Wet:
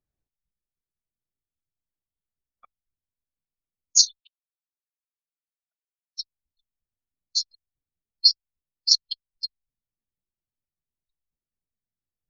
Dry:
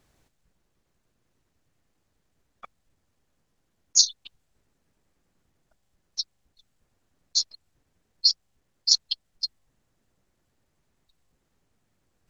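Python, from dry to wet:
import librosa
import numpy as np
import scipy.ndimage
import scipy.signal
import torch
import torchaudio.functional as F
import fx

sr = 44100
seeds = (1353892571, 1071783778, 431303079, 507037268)

y = fx.highpass(x, sr, hz=960.0, slope=12, at=(4.2, 6.19))
y = fx.spectral_expand(y, sr, expansion=1.5)
y = y * 10.0 ** (1.0 / 20.0)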